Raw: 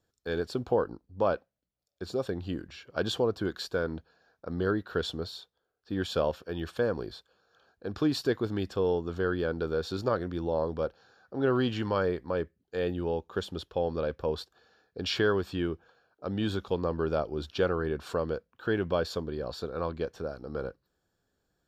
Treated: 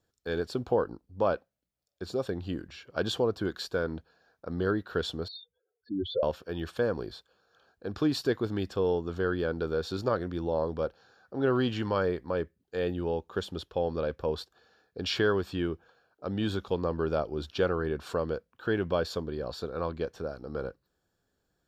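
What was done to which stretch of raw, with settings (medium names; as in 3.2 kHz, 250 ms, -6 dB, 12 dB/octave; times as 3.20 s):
5.28–6.23 s: spectral contrast enhancement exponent 3.7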